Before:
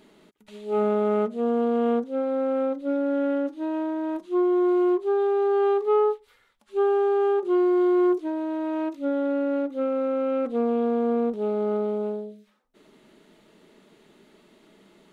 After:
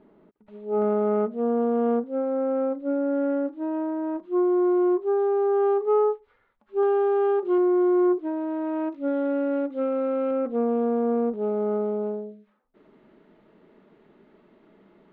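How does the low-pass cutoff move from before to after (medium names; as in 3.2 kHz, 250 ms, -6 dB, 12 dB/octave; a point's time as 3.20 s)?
1.1 kHz
from 0.82 s 1.5 kHz
from 6.83 s 2.5 kHz
from 7.58 s 1.5 kHz
from 8.24 s 2 kHz
from 9.08 s 2.8 kHz
from 10.31 s 1.7 kHz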